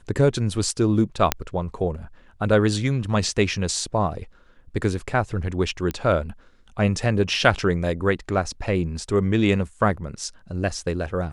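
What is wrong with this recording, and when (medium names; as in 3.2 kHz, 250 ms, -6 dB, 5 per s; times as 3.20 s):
1.32 s: pop -1 dBFS
5.91 s: pop -14 dBFS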